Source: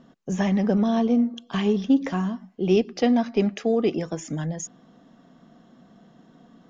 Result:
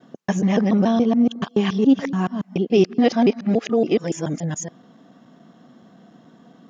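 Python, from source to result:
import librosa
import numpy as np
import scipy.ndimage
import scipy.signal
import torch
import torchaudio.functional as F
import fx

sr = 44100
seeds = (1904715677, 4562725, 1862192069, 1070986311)

y = fx.local_reverse(x, sr, ms=142.0)
y = scipy.signal.sosfilt(scipy.signal.butter(2, 110.0, 'highpass', fs=sr, output='sos'), y)
y = y * librosa.db_to_amplitude(4.0)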